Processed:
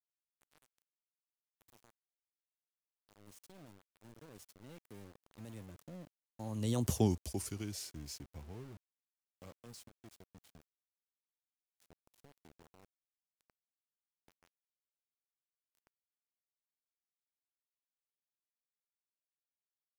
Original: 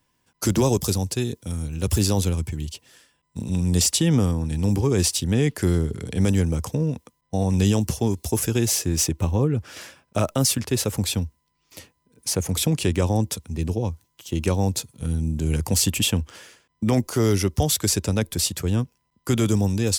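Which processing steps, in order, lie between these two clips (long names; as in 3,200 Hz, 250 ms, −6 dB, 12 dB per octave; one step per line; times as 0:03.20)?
source passing by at 0:06.98, 44 m/s, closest 5 metres
centre clipping without the shift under −47 dBFS
level −6 dB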